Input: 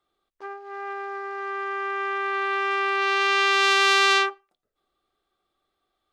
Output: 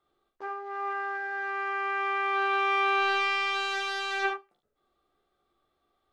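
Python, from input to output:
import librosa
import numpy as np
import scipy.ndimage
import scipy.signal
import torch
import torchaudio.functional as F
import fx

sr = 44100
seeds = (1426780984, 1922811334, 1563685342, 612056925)

y = fx.high_shelf(x, sr, hz=2100.0, db=-8.0)
y = fx.over_compress(y, sr, threshold_db=-26.0, ratio=-0.5)
y = fx.room_early_taps(y, sr, ms=(14, 41, 55, 72), db=(-8.0, -8.0, -9.0, -9.0))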